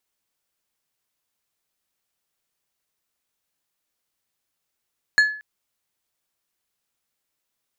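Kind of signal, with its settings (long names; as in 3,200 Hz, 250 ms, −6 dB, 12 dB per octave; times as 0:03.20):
struck glass plate, length 0.23 s, lowest mode 1,710 Hz, decay 0.45 s, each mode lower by 10 dB, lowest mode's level −9.5 dB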